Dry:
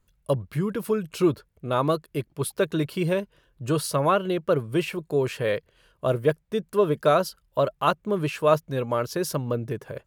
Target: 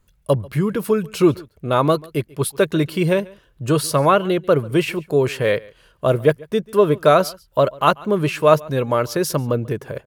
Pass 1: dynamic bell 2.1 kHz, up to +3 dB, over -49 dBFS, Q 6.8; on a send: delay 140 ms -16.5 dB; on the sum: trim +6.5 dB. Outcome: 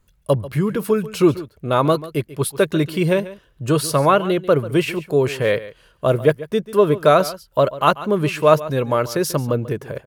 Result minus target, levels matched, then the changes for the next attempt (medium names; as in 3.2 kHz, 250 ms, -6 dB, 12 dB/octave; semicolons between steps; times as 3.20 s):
echo-to-direct +7 dB
change: delay 140 ms -23.5 dB